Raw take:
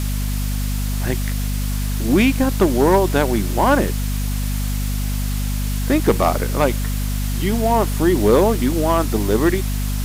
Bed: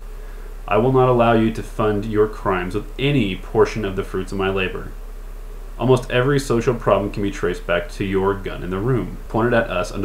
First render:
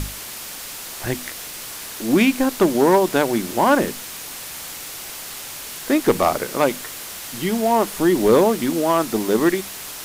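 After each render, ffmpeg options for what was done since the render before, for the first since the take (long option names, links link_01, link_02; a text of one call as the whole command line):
ffmpeg -i in.wav -af "bandreject=frequency=50:width_type=h:width=6,bandreject=frequency=100:width_type=h:width=6,bandreject=frequency=150:width_type=h:width=6,bandreject=frequency=200:width_type=h:width=6,bandreject=frequency=250:width_type=h:width=6" out.wav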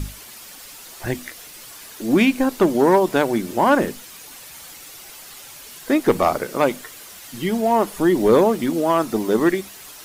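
ffmpeg -i in.wav -af "afftdn=noise_reduction=9:noise_floor=-34" out.wav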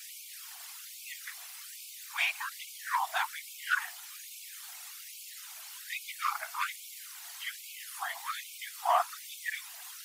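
ffmpeg -i in.wav -af "afftfilt=real='hypot(re,im)*cos(2*PI*random(0))':imag='hypot(re,im)*sin(2*PI*random(1))':win_size=512:overlap=0.75,afftfilt=real='re*gte(b*sr/1024,630*pow(2200/630,0.5+0.5*sin(2*PI*1.2*pts/sr)))':imag='im*gte(b*sr/1024,630*pow(2200/630,0.5+0.5*sin(2*PI*1.2*pts/sr)))':win_size=1024:overlap=0.75" out.wav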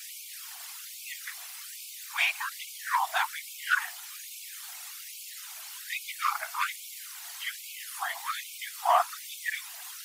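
ffmpeg -i in.wav -af "volume=3.5dB" out.wav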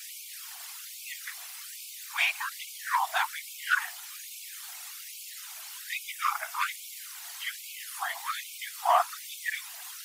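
ffmpeg -i in.wav -filter_complex "[0:a]asettb=1/sr,asplit=3[link_01][link_02][link_03];[link_01]atrim=end=6.014[link_04];[link_02]atrim=start=6.01:end=6.52,asetpts=PTS-STARTPTS,afade=type=in:duration=0.004:curve=qsin,afade=type=out:start_time=0.506:duration=0.004:curve=qsin,bandreject=frequency=4300:width=7.3[link_05];[link_03]atrim=start=6.516[link_06];[link_04][link_05]acrossfade=duration=0.004:curve1=hsin:curve2=qsin[link_07];[link_07][link_06]acrossfade=duration=0.004:curve1=qsin:curve2=hsin" out.wav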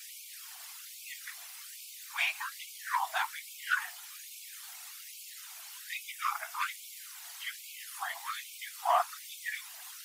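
ffmpeg -i in.wav -af "flanger=delay=5.6:depth=2.3:regen=-67:speed=0.77:shape=sinusoidal" out.wav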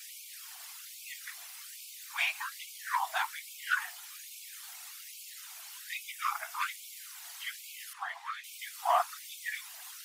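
ffmpeg -i in.wav -filter_complex "[0:a]asettb=1/sr,asplit=3[link_01][link_02][link_03];[link_01]atrim=end=7.934[link_04];[link_02]atrim=start=7.93:end=8.44,asetpts=PTS-STARTPTS,afade=type=in:duration=0.004:curve=qsin,afade=type=out:start_time=0.506:duration=0.004:curve=qsin,bandpass=frequency=1300:width_type=q:width=0.71[link_05];[link_03]atrim=start=8.436[link_06];[link_04][link_05]acrossfade=duration=0.004:curve1=hsin:curve2=qsin[link_07];[link_07][link_06]acrossfade=duration=0.004:curve1=qsin:curve2=hsin" out.wav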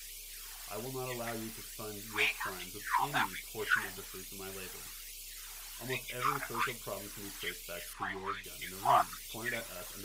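ffmpeg -i in.wav -i bed.wav -filter_complex "[1:a]volume=-26dB[link_01];[0:a][link_01]amix=inputs=2:normalize=0" out.wav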